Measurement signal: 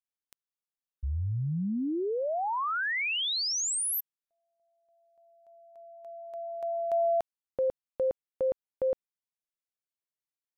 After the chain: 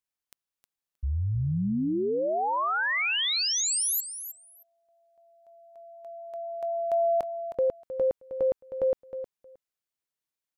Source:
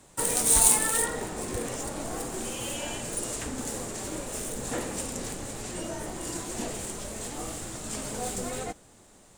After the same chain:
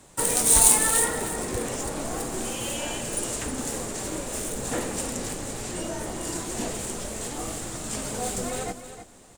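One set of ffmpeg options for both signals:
-af "aecho=1:1:313|626:0.282|0.0423,volume=1.41"

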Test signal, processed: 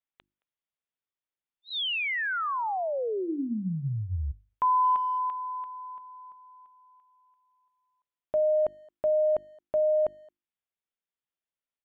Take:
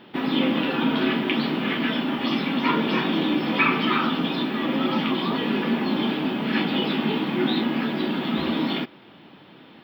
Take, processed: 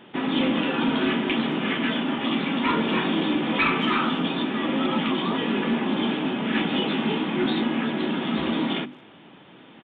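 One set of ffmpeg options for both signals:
-filter_complex "[0:a]bandreject=f=50:t=h:w=6,bandreject=f=100:t=h:w=6,bandreject=f=150:t=h:w=6,bandreject=f=200:t=h:w=6,bandreject=f=250:t=h:w=6,bandreject=f=300:t=h:w=6,bandreject=f=350:t=h:w=6,aresample=8000,volume=6.68,asoftclip=hard,volume=0.15,aresample=44100,asplit=2[s0][s1];[s1]adelay=220,highpass=300,lowpass=3400,asoftclip=type=hard:threshold=0.0794,volume=0.0447[s2];[s0][s2]amix=inputs=2:normalize=0"

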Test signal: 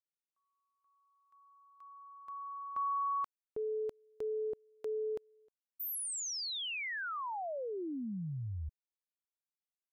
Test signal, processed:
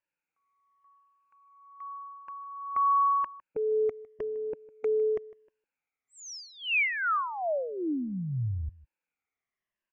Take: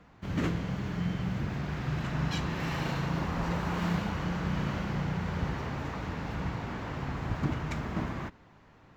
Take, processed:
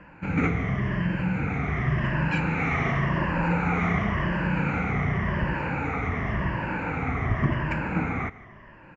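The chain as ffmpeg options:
-filter_complex "[0:a]afftfilt=real='re*pow(10,12/40*sin(2*PI*(1.3*log(max(b,1)*sr/1024/100)/log(2)-(-0.91)*(pts-256)/sr)))':imag='im*pow(10,12/40*sin(2*PI*(1.3*log(max(b,1)*sr/1024/100)/log(2)-(-0.91)*(pts-256)/sr)))':win_size=1024:overlap=0.75,asplit=2[s0][s1];[s1]acompressor=threshold=0.0141:ratio=6:attack=76:release=71:knee=6,volume=0.794[s2];[s0][s2]amix=inputs=2:normalize=0,aresample=16000,aresample=44100,highshelf=f=3000:t=q:w=3:g=-9.5,aecho=1:1:155:0.0944,volume=1.19"

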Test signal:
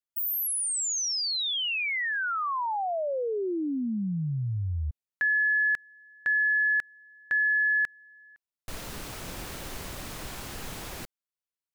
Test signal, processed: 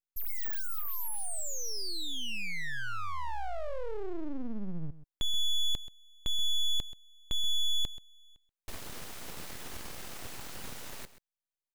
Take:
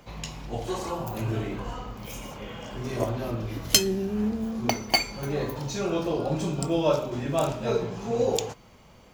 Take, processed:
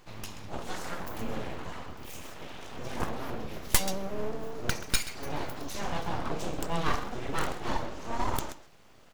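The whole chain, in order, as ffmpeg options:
-af "aecho=1:1:131:0.178,aeval=exprs='abs(val(0))':c=same,volume=0.75"

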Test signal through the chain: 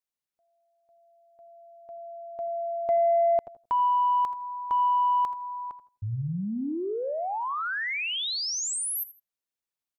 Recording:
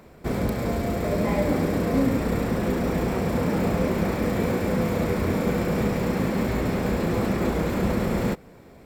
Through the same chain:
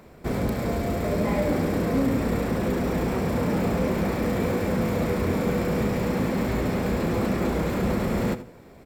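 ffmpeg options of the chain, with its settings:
-filter_complex "[0:a]asplit=2[s0][s1];[s1]aecho=0:1:80|160:0.158|0.0365[s2];[s0][s2]amix=inputs=2:normalize=0,asoftclip=type=tanh:threshold=0.2,asplit=2[s3][s4];[s4]adelay=88,lowpass=f=860:p=1,volume=0.188,asplit=2[s5][s6];[s6]adelay=88,lowpass=f=860:p=1,volume=0.28,asplit=2[s7][s8];[s8]adelay=88,lowpass=f=860:p=1,volume=0.28[s9];[s5][s7][s9]amix=inputs=3:normalize=0[s10];[s3][s10]amix=inputs=2:normalize=0"

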